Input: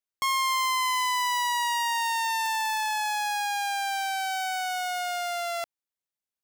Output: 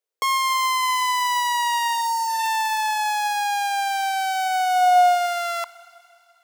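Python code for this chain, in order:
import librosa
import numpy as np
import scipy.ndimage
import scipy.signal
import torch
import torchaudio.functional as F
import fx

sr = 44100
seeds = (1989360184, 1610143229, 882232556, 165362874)

y = fx.spec_repair(x, sr, seeds[0], start_s=1.94, length_s=0.48, low_hz=1200.0, high_hz=3700.0, source='both')
y = fx.rev_schroeder(y, sr, rt60_s=2.9, comb_ms=26, drr_db=18.0)
y = fx.filter_sweep_highpass(y, sr, from_hz=460.0, to_hz=1000.0, start_s=4.3, end_s=5.5, q=6.3)
y = F.gain(torch.from_numpy(y), 3.0).numpy()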